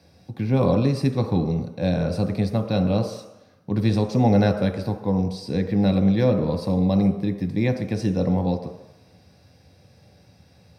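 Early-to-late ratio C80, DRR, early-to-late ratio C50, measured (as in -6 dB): 10.5 dB, 4.5 dB, 9.0 dB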